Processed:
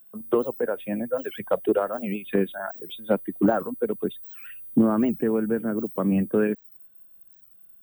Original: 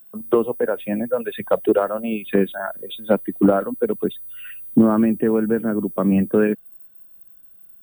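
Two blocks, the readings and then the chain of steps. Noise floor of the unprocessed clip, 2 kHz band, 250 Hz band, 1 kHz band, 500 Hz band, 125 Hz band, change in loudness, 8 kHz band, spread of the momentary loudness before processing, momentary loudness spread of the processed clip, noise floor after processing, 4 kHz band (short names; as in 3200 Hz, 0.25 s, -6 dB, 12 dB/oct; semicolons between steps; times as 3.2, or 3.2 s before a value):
-48 dBFS, -4.5 dB, -5.0 dB, -4.5 dB, -5.0 dB, -5.0 dB, -5.0 dB, n/a, 10 LU, 10 LU, -53 dBFS, -5.0 dB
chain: record warp 78 rpm, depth 250 cents; gain -5 dB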